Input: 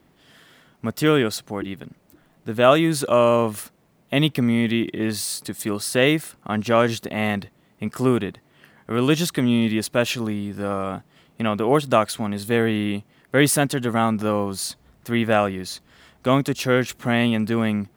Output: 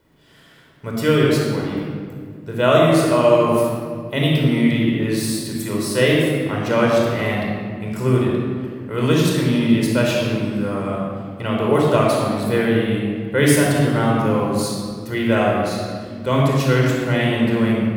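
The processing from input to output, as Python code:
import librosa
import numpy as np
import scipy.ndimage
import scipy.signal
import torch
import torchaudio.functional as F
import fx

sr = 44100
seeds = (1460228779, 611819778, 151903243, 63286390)

y = fx.room_shoebox(x, sr, seeds[0], volume_m3=3400.0, walls='mixed', distance_m=4.8)
y = y * librosa.db_to_amplitude(-4.5)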